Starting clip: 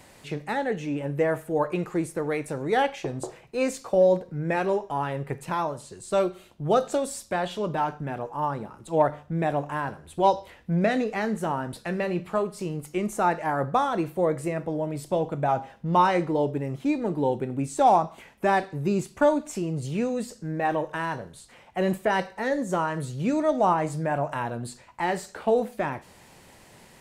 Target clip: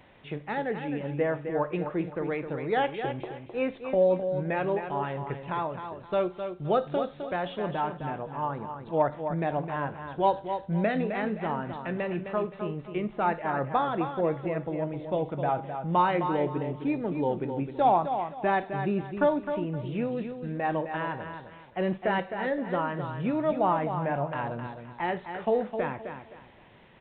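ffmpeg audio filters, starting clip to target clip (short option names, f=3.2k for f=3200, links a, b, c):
-filter_complex "[0:a]asplit=2[a][b];[b]aecho=0:1:260|520|780:0.398|0.115|0.0335[c];[a][c]amix=inputs=2:normalize=0,aresample=8000,aresample=44100,volume=-3.5dB"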